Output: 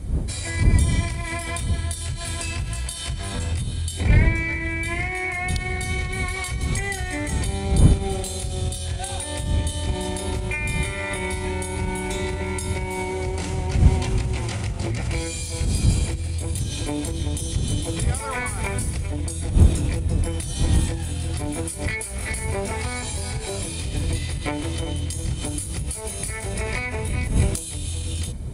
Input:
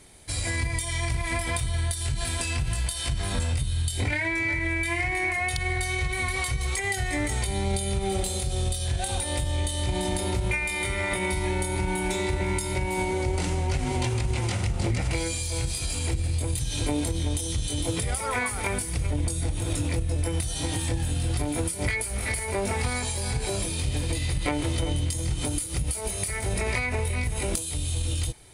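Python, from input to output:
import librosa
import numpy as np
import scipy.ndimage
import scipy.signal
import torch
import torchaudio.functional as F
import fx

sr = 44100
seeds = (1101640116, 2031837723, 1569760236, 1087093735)

y = fx.dmg_wind(x, sr, seeds[0], corner_hz=84.0, level_db=-23.0)
y = scipy.signal.sosfilt(scipy.signal.butter(2, 42.0, 'highpass', fs=sr, output='sos'), y)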